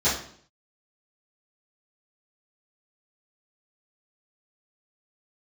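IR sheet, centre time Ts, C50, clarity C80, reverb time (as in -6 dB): 40 ms, 4.5 dB, 9.5 dB, 0.55 s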